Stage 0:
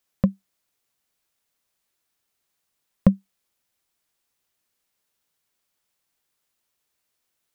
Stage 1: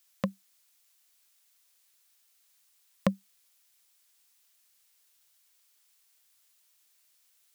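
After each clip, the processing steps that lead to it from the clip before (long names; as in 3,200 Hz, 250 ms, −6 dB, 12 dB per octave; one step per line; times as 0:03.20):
high-pass filter 780 Hz 6 dB per octave
high-shelf EQ 2,200 Hz +9.5 dB
level +1 dB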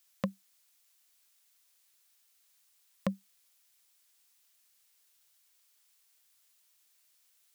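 brickwall limiter −14 dBFS, peak gain reduction 5.5 dB
level −1.5 dB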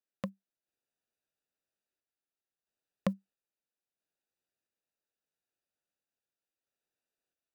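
adaptive Wiener filter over 41 samples
sample-and-hold tremolo 1.5 Hz
level +2 dB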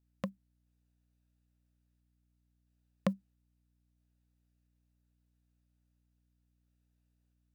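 mains hum 60 Hz, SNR 27 dB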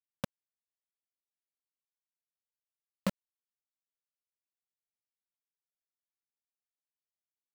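bit reduction 5 bits
shaped tremolo saw up 4.1 Hz, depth 80%
level +1.5 dB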